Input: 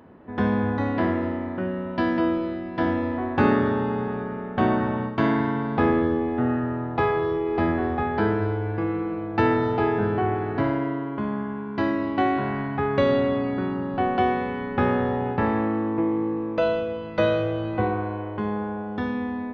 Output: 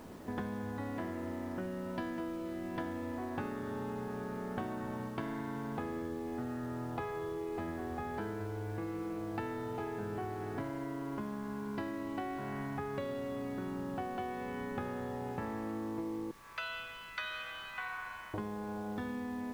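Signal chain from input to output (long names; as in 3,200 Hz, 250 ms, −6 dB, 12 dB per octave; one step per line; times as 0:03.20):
0:16.31–0:18.34: high-pass filter 1,300 Hz 24 dB per octave
downward compressor 12 to 1, threshold −36 dBFS, peak gain reduction 22 dB
background noise pink −60 dBFS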